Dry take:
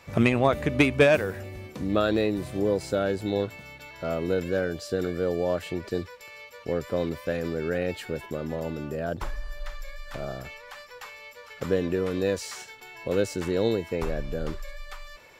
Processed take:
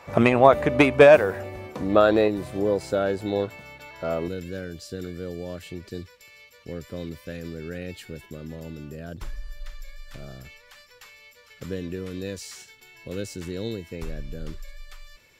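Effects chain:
parametric band 800 Hz +10.5 dB 2.2 octaves, from 0:02.28 +4 dB, from 0:04.28 −12 dB
level −1 dB

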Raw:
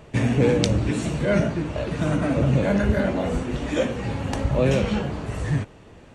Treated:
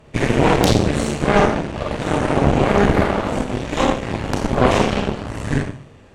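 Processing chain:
four-comb reverb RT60 0.64 s, combs from 28 ms, DRR −1.5 dB
harmonic generator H 6 −6 dB, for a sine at −1 dBFS
level −3 dB

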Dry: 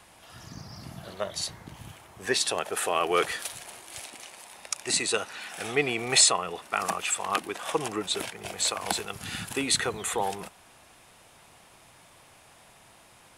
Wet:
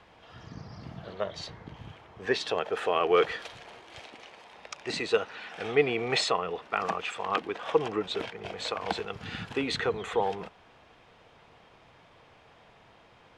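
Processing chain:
high-frequency loss of the air 210 metres
hollow resonant body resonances 460/3,200 Hz, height 7 dB

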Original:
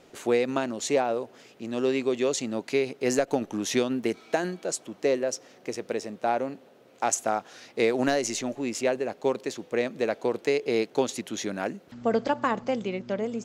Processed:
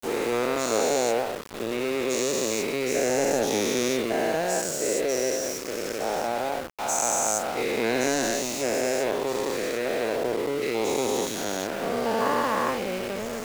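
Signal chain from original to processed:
every bin's largest magnitude spread in time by 480 ms
0:10.16–0:10.62: low-pass filter 1,200 Hz 12 dB per octave
centre clipping without the shift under −24 dBFS
level −7 dB

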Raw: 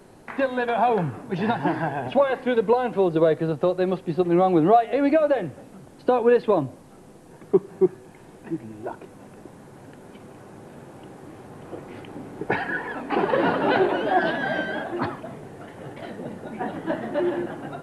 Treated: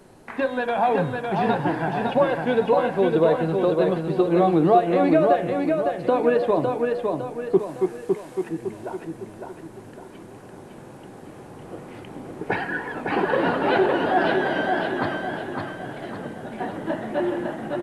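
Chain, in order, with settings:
hum removal 69.28 Hz, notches 37
0:07.59–0:08.49: tilt shelving filter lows −7 dB, about 670 Hz
repeating echo 557 ms, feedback 43%, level −4 dB

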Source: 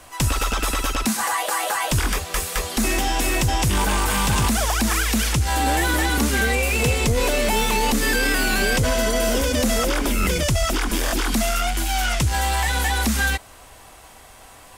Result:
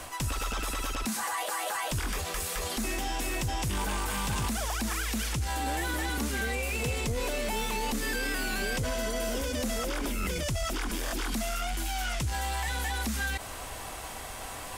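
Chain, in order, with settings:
reversed playback
downward compressor 12 to 1, threshold −27 dBFS, peak gain reduction 11.5 dB
reversed playback
brickwall limiter −29.5 dBFS, peak gain reduction 10.5 dB
level +5.5 dB

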